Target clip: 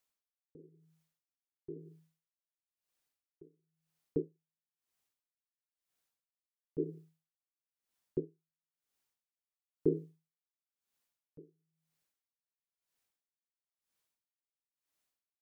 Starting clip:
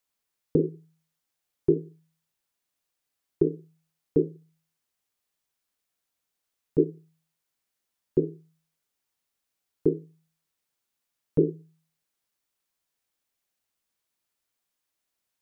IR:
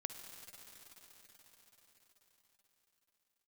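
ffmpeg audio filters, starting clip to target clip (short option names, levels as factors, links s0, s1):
-af "aeval=exprs='val(0)*pow(10,-35*(0.5-0.5*cos(2*PI*1*n/s))/20)':c=same,volume=0.841"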